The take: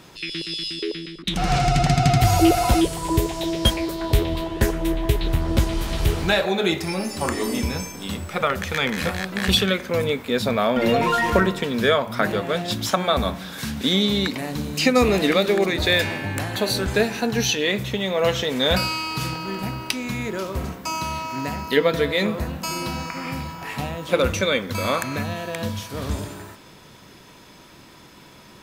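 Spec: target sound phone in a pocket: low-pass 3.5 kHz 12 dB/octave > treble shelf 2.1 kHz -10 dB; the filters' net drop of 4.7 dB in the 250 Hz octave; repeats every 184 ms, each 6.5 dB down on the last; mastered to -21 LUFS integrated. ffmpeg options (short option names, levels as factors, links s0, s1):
-af "lowpass=3500,equalizer=f=250:t=o:g=-6.5,highshelf=f=2100:g=-10,aecho=1:1:184|368|552|736|920|1104:0.473|0.222|0.105|0.0491|0.0231|0.0109,volume=1.5"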